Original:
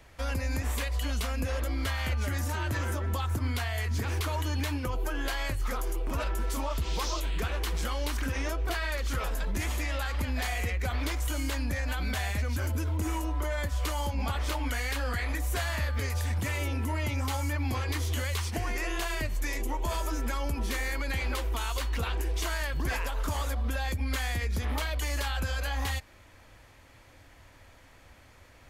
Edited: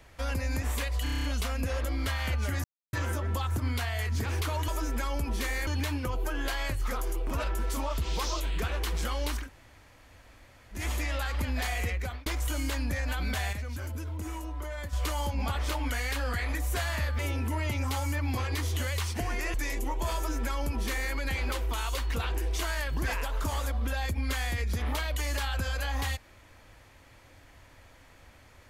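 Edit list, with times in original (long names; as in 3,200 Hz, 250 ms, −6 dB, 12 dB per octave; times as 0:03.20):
0:01.03: stutter 0.03 s, 8 plays
0:02.43–0:02.72: silence
0:08.22–0:09.58: fill with room tone, crossfade 0.16 s
0:10.63–0:11.06: fade out equal-power
0:12.33–0:13.73: clip gain −6 dB
0:15.99–0:16.56: remove
0:18.91–0:19.37: remove
0:19.98–0:20.97: duplicate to 0:04.47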